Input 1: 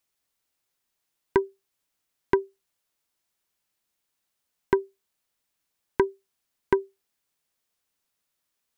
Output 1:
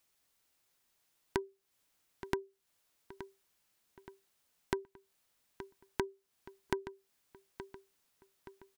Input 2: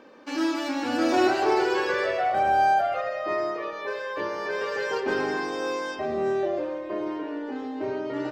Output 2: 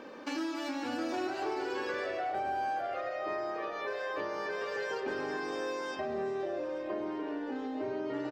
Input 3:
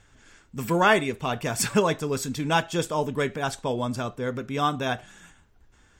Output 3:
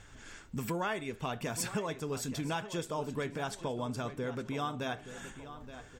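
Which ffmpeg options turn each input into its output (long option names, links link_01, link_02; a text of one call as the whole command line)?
ffmpeg -i in.wav -filter_complex "[0:a]acompressor=threshold=-39dB:ratio=4,asplit=2[link_01][link_02];[link_02]adelay=873,lowpass=frequency=4400:poles=1,volume=-12.5dB,asplit=2[link_03][link_04];[link_04]adelay=873,lowpass=frequency=4400:poles=1,volume=0.47,asplit=2[link_05][link_06];[link_06]adelay=873,lowpass=frequency=4400:poles=1,volume=0.47,asplit=2[link_07][link_08];[link_08]adelay=873,lowpass=frequency=4400:poles=1,volume=0.47,asplit=2[link_09][link_10];[link_10]adelay=873,lowpass=frequency=4400:poles=1,volume=0.47[link_11];[link_03][link_05][link_07][link_09][link_11]amix=inputs=5:normalize=0[link_12];[link_01][link_12]amix=inputs=2:normalize=0,volume=3.5dB" out.wav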